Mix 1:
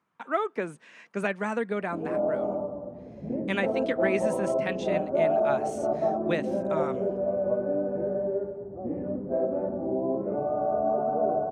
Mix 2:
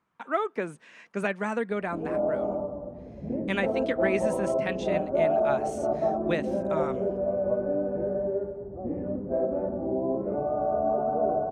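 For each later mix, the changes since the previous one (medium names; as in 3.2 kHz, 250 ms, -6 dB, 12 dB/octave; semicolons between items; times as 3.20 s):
master: remove high-pass 100 Hz 12 dB/octave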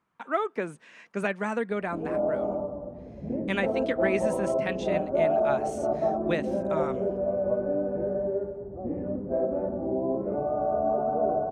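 no change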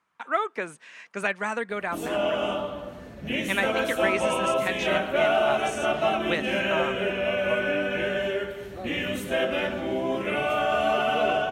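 speech: add tilt shelf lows -6.5 dB, about 640 Hz; background: remove inverse Chebyshev low-pass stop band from 4.4 kHz, stop band 80 dB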